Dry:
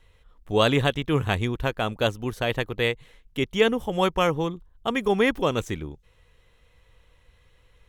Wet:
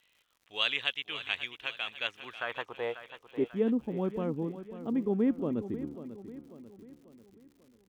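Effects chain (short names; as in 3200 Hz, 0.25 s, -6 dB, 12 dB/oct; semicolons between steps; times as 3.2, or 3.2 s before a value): band-pass sweep 2800 Hz -> 250 Hz, 1.92–3.65; feedback echo 0.542 s, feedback 47%, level -12.5 dB; crackle 160/s -54 dBFS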